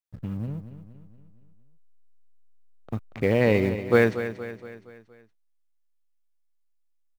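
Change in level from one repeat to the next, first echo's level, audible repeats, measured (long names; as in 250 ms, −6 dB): −6.0 dB, −11.5 dB, 4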